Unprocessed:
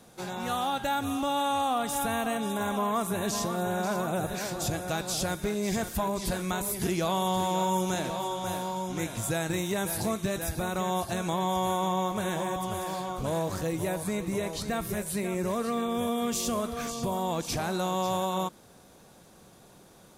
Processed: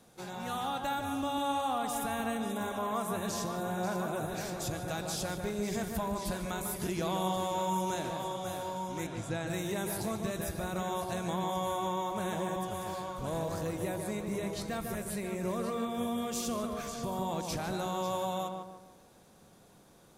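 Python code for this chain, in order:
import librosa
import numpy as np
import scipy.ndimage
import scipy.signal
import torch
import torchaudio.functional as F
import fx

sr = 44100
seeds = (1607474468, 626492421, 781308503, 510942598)

y = fx.air_absorb(x, sr, metres=82.0, at=(9.06, 9.46), fade=0.02)
y = fx.echo_filtered(y, sr, ms=149, feedback_pct=41, hz=1800.0, wet_db=-4)
y = y * librosa.db_to_amplitude(-6.0)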